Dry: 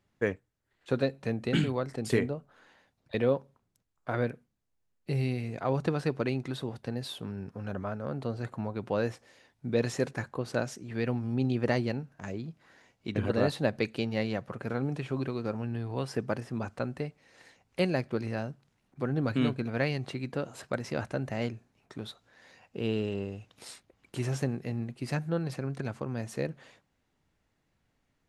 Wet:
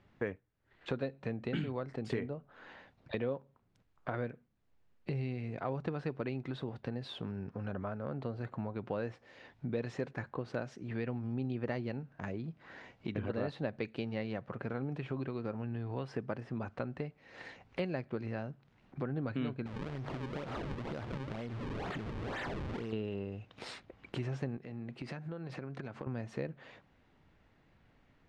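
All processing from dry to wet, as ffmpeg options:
-filter_complex "[0:a]asettb=1/sr,asplit=3[s0][s1][s2];[s0]atrim=end=19.664[s3];[s1]atrim=start=19.66:end=22.93,asetpts=PTS-STARTPTS,afade=t=in:d=0.004:c=qsin,afade=t=out:st=3.266:d=0.004:c=qsin,aeval=exprs='val(0)+0.5*0.0158*sgn(val(0))':c=same,acrusher=samples=37:mix=1:aa=0.000001:lfo=1:lforange=59.2:lforate=2.1,acompressor=threshold=0.0112:ratio=3:attack=3.2:release=140:knee=1:detection=peak[s4];[s2]atrim=start=22.926[s5];[s3][s4]acrossfade=d=0.004:c1=hsin:c2=qsin[s6];[s6][s5]acrossfade=d=0.004:c1=qsin:c2=hsin,asettb=1/sr,asplit=3[s7][s8][s9];[s7]atrim=end=24.574[s10];[s8]atrim=start=24.57:end=26.07,asetpts=PTS-STARTPTS,afade=t=in:d=0.004:c=qsin,afade=t=out:st=1.496:d=0.004:c=qsin,highpass=f=160:p=1,acompressor=threshold=0.00708:ratio=3:attack=3.2:release=140:knee=1:detection=peak[s11];[s9]atrim=start=26.066[s12];[s10][s11]acrossfade=d=0.004:c1=hsin:c2=qsin[s13];[s13][s12]acrossfade=d=0.004:c1=qsin:c2=hsin,lowpass=3200,acompressor=threshold=0.00282:ratio=2.5,volume=2.82"

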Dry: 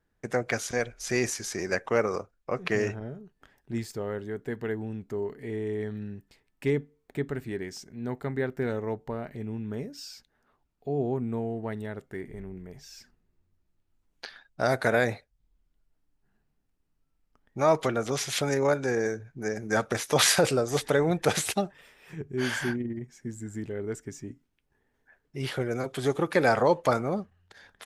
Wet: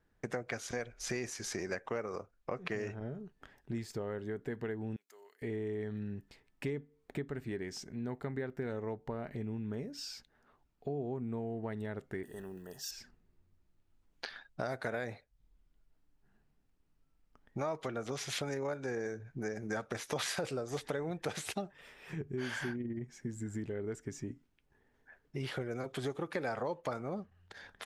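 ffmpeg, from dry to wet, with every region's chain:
-filter_complex "[0:a]asettb=1/sr,asplit=3[s0][s1][s2];[s0]atrim=end=4.964[s3];[s1]atrim=start=4.96:end=5.42,asetpts=PTS-STARTPTS,afade=t=in:d=0.004:c=qsin,afade=t=out:st=0.456:d=0.004:c=qsin,highpass=460,aderivative[s4];[s2]atrim=start=5.416[s5];[s3][s4]acrossfade=d=0.004:c1=hsin:c2=qsin[s6];[s6][s5]acrossfade=d=0.004:c1=qsin:c2=hsin,asettb=1/sr,asplit=3[s7][s8][s9];[s7]atrim=end=12.234[s10];[s8]atrim=start=12.23:end=12.91,asetpts=PTS-STARTPTS,afade=t=in:d=0.004:c=qsin,afade=t=out:st=0.676:d=0.004:c=qsin,asuperstop=centerf=2200:order=12:qfactor=3.9,aemphasis=mode=production:type=riaa[s11];[s9]atrim=start=12.906[s12];[s10][s11]acrossfade=d=0.004:c1=hsin:c2=qsin[s13];[s13][s12]acrossfade=d=0.004:c1=qsin:c2=hsin,highshelf=f=7800:g=-8,acompressor=threshold=0.0126:ratio=4,volume=1.19"

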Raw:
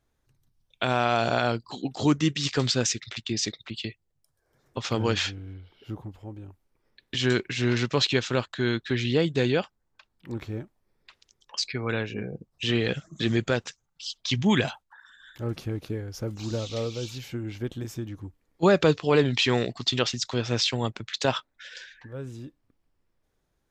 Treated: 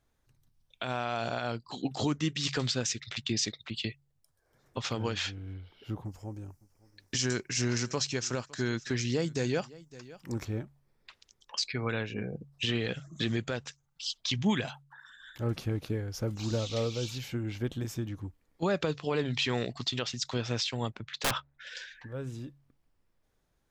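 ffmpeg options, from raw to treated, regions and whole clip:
-filter_complex "[0:a]asettb=1/sr,asplit=3[s0][s1][s2];[s0]atrim=end=6.054[s3];[s1]atrim=start=6.05:end=10.45,asetpts=PTS-STARTPTS,afade=t=in:d=0.004:c=qsin,afade=t=out:st=4.396:d=0.004:c=qsin,highshelf=f=4500:t=q:w=3:g=7.5,aecho=1:1:559:0.0668,atrim=end_sample=194040[s4];[s2]atrim=start=10.446[s5];[s3][s4]acrossfade=d=0.004:c1=hsin:c2=qsin[s6];[s6][s5]acrossfade=d=0.004:c1=qsin:c2=hsin,asettb=1/sr,asplit=3[s7][s8][s9];[s7]atrim=end=20.954[s10];[s8]atrim=start=20.95:end=21.67,asetpts=PTS-STARTPTS,afade=t=in:d=0.004:c=qsin,afade=t=out:st=0.716:d=0.004:c=qsin,lowpass=f=1900:p=1,aeval=exprs='(mod(12.6*val(0)+1,2)-1)/12.6':c=same[s11];[s9]atrim=start=21.666[s12];[s10][s11]acrossfade=d=0.004:c1=hsin:c2=qsin[s13];[s13][s12]acrossfade=d=0.004:c1=qsin:c2=hsin,equalizer=f=360:w=2.1:g=-2.5,bandreject=f=69.83:t=h:w=4,bandreject=f=139.66:t=h:w=4,alimiter=limit=0.112:level=0:latency=1:release=436"

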